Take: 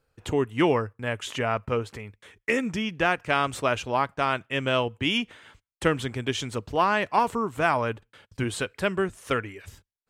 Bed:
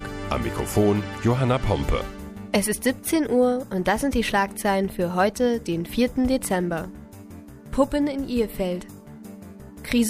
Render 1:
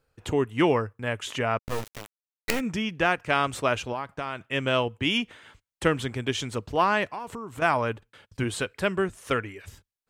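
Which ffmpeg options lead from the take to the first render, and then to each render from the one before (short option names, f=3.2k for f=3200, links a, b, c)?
-filter_complex "[0:a]asplit=3[a][b][c];[a]afade=t=out:st=1.57:d=0.02[d];[b]acrusher=bits=3:dc=4:mix=0:aa=0.000001,afade=t=in:st=1.57:d=0.02,afade=t=out:st=2.59:d=0.02[e];[c]afade=t=in:st=2.59:d=0.02[f];[d][e][f]amix=inputs=3:normalize=0,asettb=1/sr,asplit=3[g][h][i];[g]atrim=end=3.924[j];[h]atrim=start=3.92:end=4.46,asetpts=PTS-STARTPTS,afade=t=in:d=0.004:c=qsin,afade=t=out:st=0.536:d=0.004:c=qsin,acompressor=threshold=-28dB:ratio=4:attack=3.2:release=140:knee=1:detection=peak[k];[i]atrim=start=4.456[l];[j][k]acrossfade=d=0.004:c1=hsin:c2=qsin[m];[m][l]acrossfade=d=0.004:c1=qsin:c2=hsin,asettb=1/sr,asplit=3[n][o][p];[n]atrim=end=7.054[q];[o]atrim=start=7.05:end=7.62,asetpts=PTS-STARTPTS,afade=t=in:d=0.004:c=qsin,afade=t=out:st=0.566:d=0.004:c=qsin,acompressor=threshold=-33dB:ratio=5:attack=3.2:release=140:knee=1:detection=peak[r];[p]atrim=start=7.616[s];[q][r]acrossfade=d=0.004:c1=hsin:c2=qsin[t];[t][s]acrossfade=d=0.004:c1=qsin:c2=hsin"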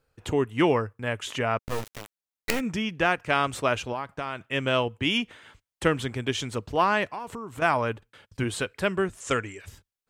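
-filter_complex "[0:a]asettb=1/sr,asplit=3[a][b][c];[a]atrim=end=9.204[d];[b]atrim=start=9.2:end=9.61,asetpts=PTS-STARTPTS,afade=t=in:d=0.004:c=qsin,afade=t=out:st=0.406:d=0.004:c=qsin,lowpass=f=7.4k:t=q:w=6.9[e];[c]atrim=start=9.606[f];[d][e]acrossfade=d=0.004:c1=hsin:c2=qsin[g];[g][f]acrossfade=d=0.004:c1=qsin:c2=hsin"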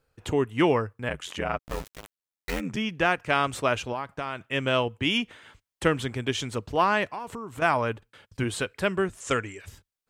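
-filter_complex "[0:a]asettb=1/sr,asplit=3[a][b][c];[a]atrim=end=1.084[d];[b]atrim=start=1.08:end=2.77,asetpts=PTS-STARTPTS,afade=t=in:d=0.004:c=qsin,afade=t=out:st=1.686:d=0.004:c=qsin,aeval=exprs='val(0)*sin(2*PI*44*n/s)':c=same[e];[c]atrim=start=2.766[f];[d][e]acrossfade=d=0.004:c1=hsin:c2=qsin[g];[g][f]acrossfade=d=0.004:c1=qsin:c2=hsin"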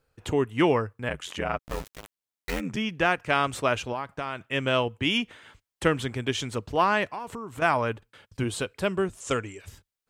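-filter_complex "[0:a]asettb=1/sr,asplit=3[a][b][c];[a]atrim=end=8.404[d];[b]atrim=start=8.4:end=9.66,asetpts=PTS-STARTPTS,afade=t=in:d=0.004:c=qsin,afade=t=out:st=1.256:d=0.004:c=qsin,equalizer=f=1.8k:t=o:w=0.8:g=-5.5[e];[c]atrim=start=9.656[f];[d][e]acrossfade=d=0.004:c1=hsin:c2=qsin[g];[g][f]acrossfade=d=0.004:c1=qsin:c2=hsin"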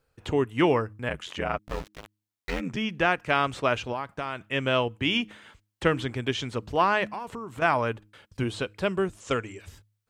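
-filter_complex "[0:a]acrossover=split=5800[a][b];[b]acompressor=threshold=-55dB:ratio=4:attack=1:release=60[c];[a][c]amix=inputs=2:normalize=0,bandreject=f=104.8:t=h:w=4,bandreject=f=209.6:t=h:w=4,bandreject=f=314.4:t=h:w=4"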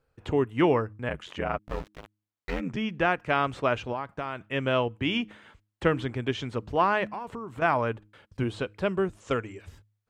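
-af "highshelf=f=3.1k:g=-9.5"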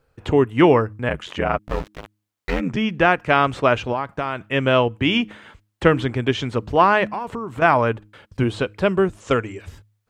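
-af "volume=8.5dB"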